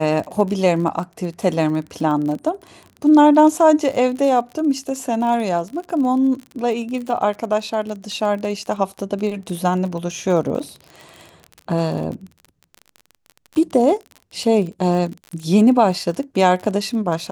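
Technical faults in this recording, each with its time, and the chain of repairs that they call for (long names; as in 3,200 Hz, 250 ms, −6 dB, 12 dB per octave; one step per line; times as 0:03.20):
surface crackle 38 per second −27 dBFS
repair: click removal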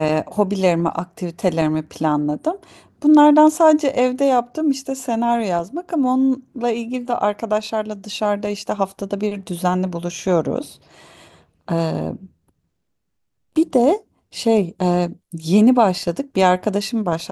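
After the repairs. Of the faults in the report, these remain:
none of them is left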